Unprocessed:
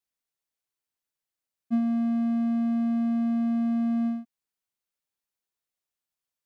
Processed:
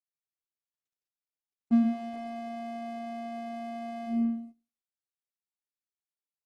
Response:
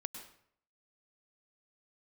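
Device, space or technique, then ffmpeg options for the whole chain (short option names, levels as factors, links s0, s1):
speakerphone in a meeting room: -filter_complex "[0:a]equalizer=f=1200:w=0.95:g=-3.5[s0];[1:a]atrim=start_sample=2205[s1];[s0][s1]afir=irnorm=-1:irlink=0,dynaudnorm=f=120:g=5:m=4.47,agate=range=0.158:threshold=0.0141:ratio=16:detection=peak,volume=0.422" -ar 48000 -c:a libopus -b:a 16k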